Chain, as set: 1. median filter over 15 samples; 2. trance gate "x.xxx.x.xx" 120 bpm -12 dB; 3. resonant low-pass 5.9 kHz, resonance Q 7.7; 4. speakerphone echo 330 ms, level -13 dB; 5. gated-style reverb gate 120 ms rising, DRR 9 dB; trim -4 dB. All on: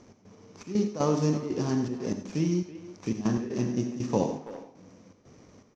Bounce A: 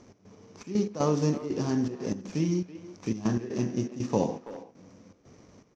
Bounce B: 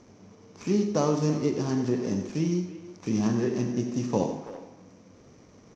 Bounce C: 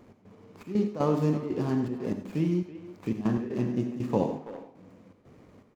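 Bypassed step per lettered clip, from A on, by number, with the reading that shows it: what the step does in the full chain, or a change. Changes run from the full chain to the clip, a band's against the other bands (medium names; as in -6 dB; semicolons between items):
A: 5, echo-to-direct -7.5 dB to -13.5 dB; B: 2, loudness change +1.5 LU; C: 3, 4 kHz band -6.5 dB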